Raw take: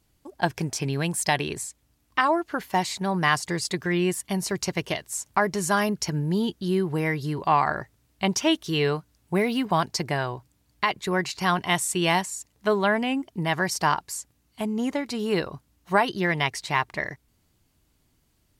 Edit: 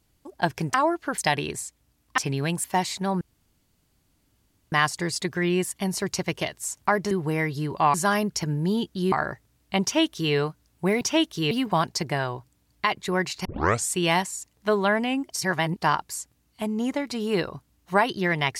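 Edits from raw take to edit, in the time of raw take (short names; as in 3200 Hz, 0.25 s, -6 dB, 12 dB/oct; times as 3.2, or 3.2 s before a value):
0.74–1.2 swap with 2.2–2.64
3.21 insert room tone 1.51 s
6.78–7.61 move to 5.6
8.32–8.82 copy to 9.5
11.44 tape start 0.43 s
13.31–13.8 reverse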